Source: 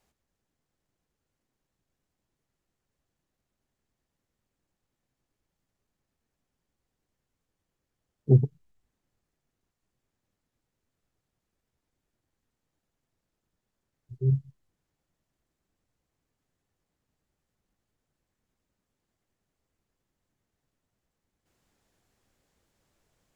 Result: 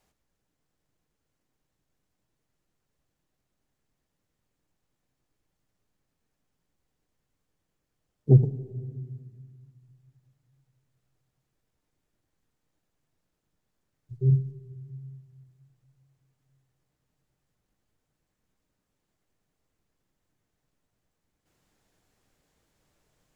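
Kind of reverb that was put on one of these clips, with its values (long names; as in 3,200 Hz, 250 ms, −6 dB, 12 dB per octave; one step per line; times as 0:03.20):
rectangular room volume 2,300 cubic metres, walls mixed, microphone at 0.48 metres
level +1.5 dB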